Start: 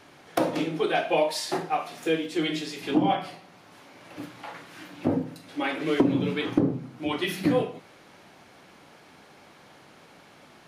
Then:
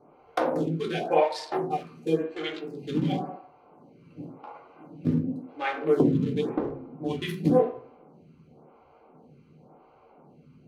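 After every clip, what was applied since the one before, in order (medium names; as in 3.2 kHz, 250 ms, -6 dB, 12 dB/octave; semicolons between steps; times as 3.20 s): local Wiener filter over 25 samples; reverberation RT60 0.60 s, pre-delay 3 ms, DRR 1 dB; lamp-driven phase shifter 0.93 Hz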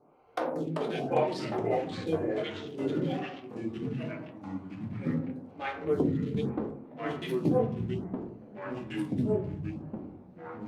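ever faster or slower copies 318 ms, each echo -3 st, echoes 3; trim -6 dB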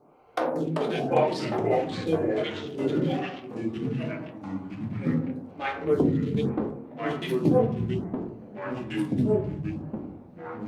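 de-hum 92.41 Hz, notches 19; trim +5 dB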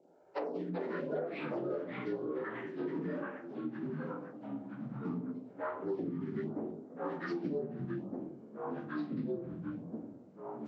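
frequency axis rescaled in octaves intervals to 77%; bass shelf 140 Hz -10.5 dB; compression 5:1, threshold -30 dBFS, peak gain reduction 11 dB; trim -3.5 dB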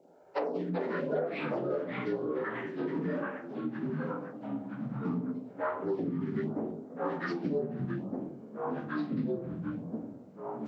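peaking EQ 340 Hz -5 dB 0.28 oct; trim +5.5 dB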